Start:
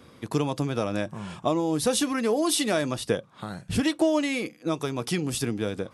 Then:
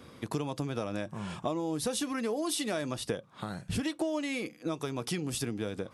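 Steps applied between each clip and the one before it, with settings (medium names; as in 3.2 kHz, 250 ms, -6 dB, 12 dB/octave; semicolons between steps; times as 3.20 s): compression 2.5:1, threshold -33 dBFS, peak gain reduction 10.5 dB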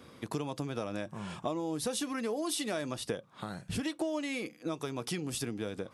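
bass shelf 110 Hz -4.5 dB; trim -1.5 dB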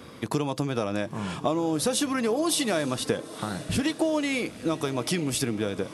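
echo that smears into a reverb 944 ms, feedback 42%, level -15.5 dB; trim +8.5 dB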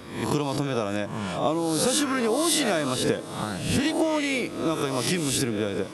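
reverse spectral sustain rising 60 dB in 0.61 s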